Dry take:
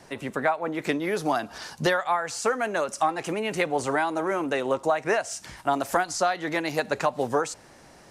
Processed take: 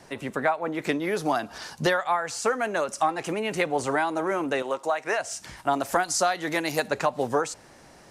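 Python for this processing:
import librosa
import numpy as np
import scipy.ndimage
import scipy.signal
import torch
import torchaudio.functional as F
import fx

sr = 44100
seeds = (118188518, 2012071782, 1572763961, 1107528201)

y = fx.highpass(x, sr, hz=600.0, slope=6, at=(4.62, 5.2))
y = fx.high_shelf(y, sr, hz=6700.0, db=11.0, at=(6.03, 6.88))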